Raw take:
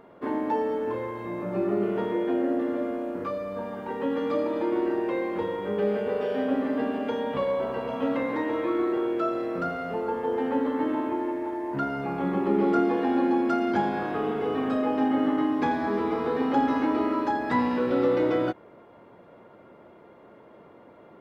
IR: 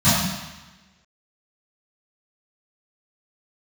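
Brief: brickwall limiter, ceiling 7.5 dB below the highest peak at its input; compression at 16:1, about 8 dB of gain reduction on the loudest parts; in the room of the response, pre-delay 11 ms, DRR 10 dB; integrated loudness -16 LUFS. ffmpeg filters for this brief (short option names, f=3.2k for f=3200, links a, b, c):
-filter_complex "[0:a]acompressor=threshold=-27dB:ratio=16,alimiter=level_in=2.5dB:limit=-24dB:level=0:latency=1,volume=-2.5dB,asplit=2[a][b];[1:a]atrim=start_sample=2205,adelay=11[c];[b][c]afir=irnorm=-1:irlink=0,volume=-31.5dB[d];[a][d]amix=inputs=2:normalize=0,volume=17.5dB"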